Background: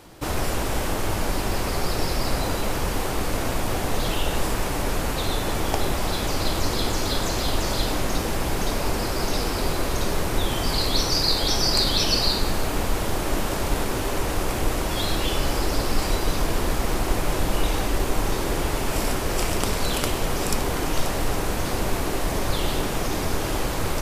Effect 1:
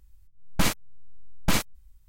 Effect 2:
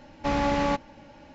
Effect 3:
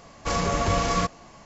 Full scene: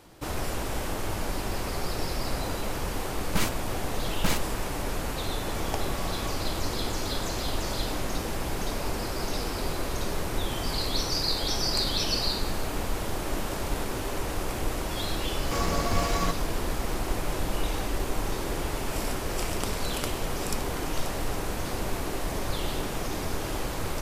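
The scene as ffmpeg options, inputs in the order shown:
ffmpeg -i bed.wav -i cue0.wav -i cue1.wav -i cue2.wav -filter_complex "[3:a]asplit=2[link_01][link_02];[0:a]volume=-6dB[link_03];[link_02]aeval=exprs='sgn(val(0))*max(abs(val(0))-0.0126,0)':channel_layout=same[link_04];[1:a]atrim=end=2.08,asetpts=PTS-STARTPTS,volume=-3.5dB,afade=type=in:duration=0.004:curve=hsin,afade=type=out:start_time=2.076:duration=0.004:curve=hsin,adelay=2760[link_05];[link_01]atrim=end=1.45,asetpts=PTS-STARTPTS,volume=-17dB,afade=type=in:duration=0.004:curve=hsin,afade=type=out:start_time=1.446:duration=0.004:curve=hsin,adelay=5280[link_06];[link_04]atrim=end=1.45,asetpts=PTS-STARTPTS,volume=-4dB,afade=type=in:duration=0.004:curve=hsin,afade=type=out:start_time=1.446:duration=0.004:curve=hsin,adelay=15250[link_07];[link_03][link_05][link_06][link_07]amix=inputs=4:normalize=0" out.wav

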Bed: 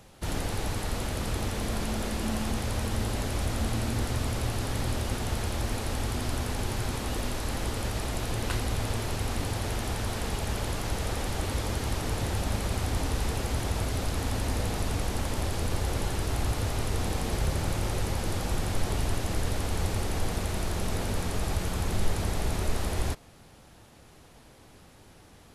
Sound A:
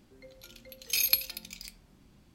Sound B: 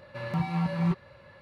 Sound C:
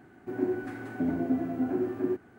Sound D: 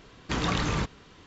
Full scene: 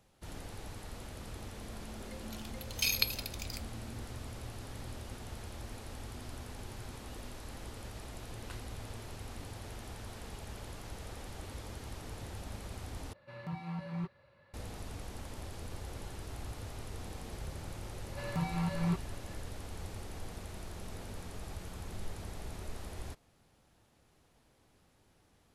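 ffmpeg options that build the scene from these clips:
ffmpeg -i bed.wav -i cue0.wav -i cue1.wav -filter_complex "[2:a]asplit=2[link_01][link_02];[0:a]volume=-14.5dB[link_03];[1:a]acrossover=split=6000[link_04][link_05];[link_05]acompressor=threshold=-35dB:ratio=4:attack=1:release=60[link_06];[link_04][link_06]amix=inputs=2:normalize=0[link_07];[link_02]aemphasis=mode=production:type=cd[link_08];[link_03]asplit=2[link_09][link_10];[link_09]atrim=end=13.134[link_11];[link_01]atrim=end=1.41,asetpts=PTS-STARTPTS,volume=-12dB[link_12];[link_10]atrim=start=14.536[link_13];[link_07]atrim=end=2.34,asetpts=PTS-STARTPTS,afade=type=in:duration=0.004:curve=hsin,afade=type=out:start_time=2.336:duration=0.004:curve=hsin,adelay=1890[link_14];[link_08]atrim=end=1.41,asetpts=PTS-STARTPTS,volume=-5.5dB,afade=type=in:duration=0.004:curve=hsin,afade=type=out:start_time=1.406:duration=0.004:curve=hsin,adelay=18020[link_15];[link_11][link_12]acrossfade=duration=0.004:curve1=hsin:curve2=hsin[link_16];[link_16][link_13]acrossfade=duration=0.004:curve1=hsin:curve2=hsin[link_17];[link_17][link_14][link_15]amix=inputs=3:normalize=0" out.wav

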